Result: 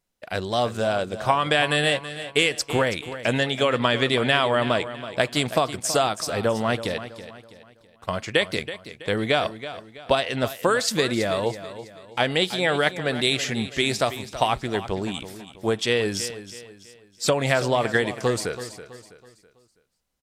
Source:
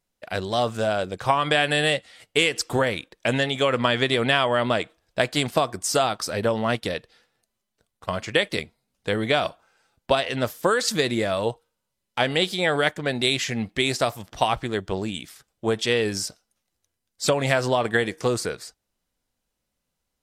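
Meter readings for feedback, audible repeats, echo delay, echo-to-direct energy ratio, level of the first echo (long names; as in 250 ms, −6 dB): 39%, 3, 327 ms, −12.5 dB, −13.0 dB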